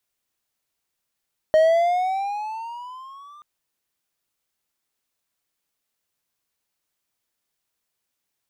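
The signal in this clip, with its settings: gliding synth tone triangle, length 1.88 s, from 621 Hz, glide +11.5 st, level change -31.5 dB, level -9.5 dB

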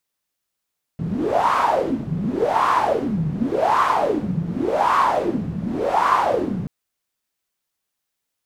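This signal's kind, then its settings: wind-like swept noise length 5.68 s, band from 160 Hz, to 1100 Hz, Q 7.4, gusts 5, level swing 7 dB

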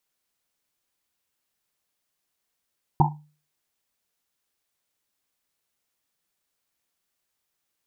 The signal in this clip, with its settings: Risset drum, pitch 150 Hz, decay 0.39 s, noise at 870 Hz, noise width 190 Hz, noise 50%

